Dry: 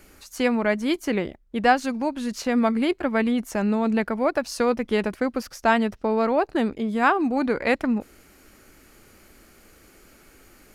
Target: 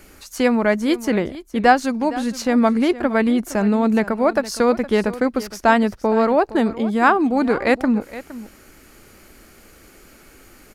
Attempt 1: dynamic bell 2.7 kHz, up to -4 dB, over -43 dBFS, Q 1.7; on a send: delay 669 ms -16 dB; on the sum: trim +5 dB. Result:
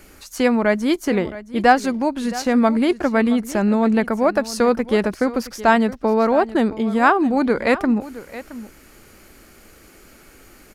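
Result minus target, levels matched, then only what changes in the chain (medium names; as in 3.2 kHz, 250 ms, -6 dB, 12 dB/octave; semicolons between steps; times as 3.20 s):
echo 205 ms late
change: delay 464 ms -16 dB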